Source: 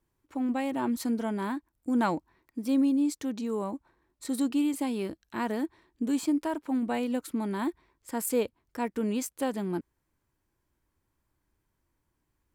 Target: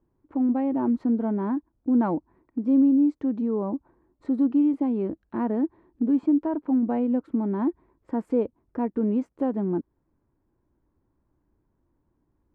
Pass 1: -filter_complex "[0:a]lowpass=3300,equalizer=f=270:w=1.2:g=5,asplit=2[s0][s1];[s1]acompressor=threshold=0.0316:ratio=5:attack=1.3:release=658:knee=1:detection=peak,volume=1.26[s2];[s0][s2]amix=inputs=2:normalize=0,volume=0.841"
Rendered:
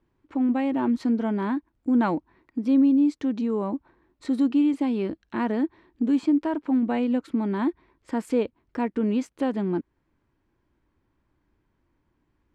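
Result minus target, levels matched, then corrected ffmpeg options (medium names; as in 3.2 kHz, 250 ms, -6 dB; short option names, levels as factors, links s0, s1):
4 kHz band +18.5 dB
-filter_complex "[0:a]lowpass=960,equalizer=f=270:w=1.2:g=5,asplit=2[s0][s1];[s1]acompressor=threshold=0.0316:ratio=5:attack=1.3:release=658:knee=1:detection=peak,volume=1.26[s2];[s0][s2]amix=inputs=2:normalize=0,volume=0.841"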